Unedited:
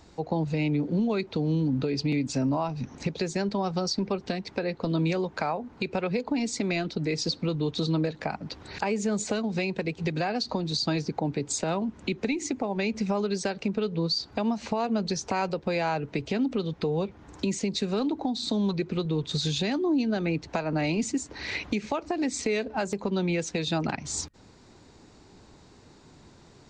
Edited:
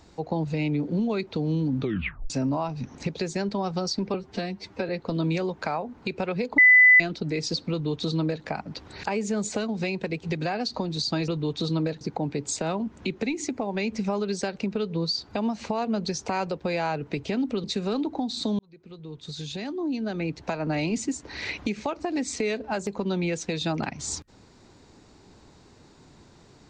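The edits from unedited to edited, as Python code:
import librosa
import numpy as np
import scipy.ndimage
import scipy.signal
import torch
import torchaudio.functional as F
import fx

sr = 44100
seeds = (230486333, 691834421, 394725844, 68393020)

y = fx.edit(x, sr, fx.tape_stop(start_s=1.8, length_s=0.5),
    fx.stretch_span(start_s=4.14, length_s=0.5, factor=1.5),
    fx.bleep(start_s=6.33, length_s=0.42, hz=2000.0, db=-11.0),
    fx.duplicate(start_s=7.46, length_s=0.73, to_s=11.03),
    fx.cut(start_s=16.66, length_s=1.04),
    fx.fade_in_span(start_s=18.65, length_s=2.03), tone=tone)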